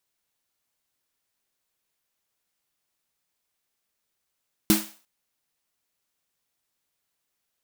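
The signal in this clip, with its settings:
synth snare length 0.35 s, tones 210 Hz, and 320 Hz, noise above 500 Hz, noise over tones −4 dB, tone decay 0.27 s, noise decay 0.41 s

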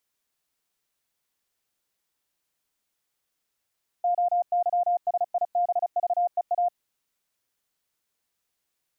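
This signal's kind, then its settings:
Morse code "OYSIBVEA" 35 words per minute 705 Hz −20 dBFS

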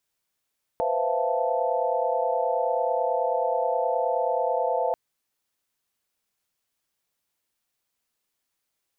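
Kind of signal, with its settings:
held notes B4/C5/E5/F5/A5 sine, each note −28.5 dBFS 4.14 s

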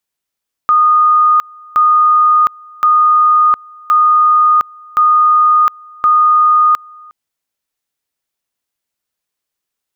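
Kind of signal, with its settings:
tone at two levels in turn 1,230 Hz −6 dBFS, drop 27.5 dB, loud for 0.71 s, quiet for 0.36 s, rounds 6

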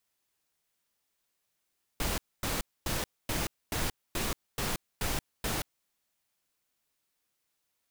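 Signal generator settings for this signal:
noise bursts pink, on 0.18 s, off 0.25 s, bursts 9, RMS −31.5 dBFS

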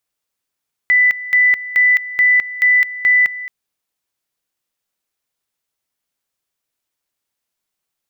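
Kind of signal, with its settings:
tone at two levels in turn 1,990 Hz −8.5 dBFS, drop 16 dB, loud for 0.21 s, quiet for 0.22 s, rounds 6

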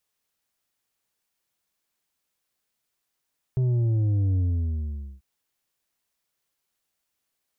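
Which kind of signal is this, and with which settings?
bass drop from 130 Hz, over 1.64 s, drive 6 dB, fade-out 0.84 s, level −20.5 dB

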